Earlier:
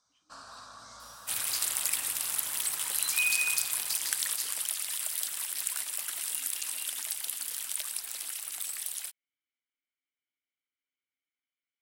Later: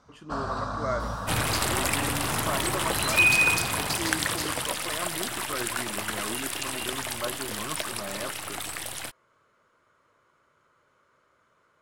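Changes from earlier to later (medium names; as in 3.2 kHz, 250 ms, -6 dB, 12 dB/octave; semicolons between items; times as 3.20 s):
speech: remove vowel filter i; master: remove pre-emphasis filter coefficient 0.97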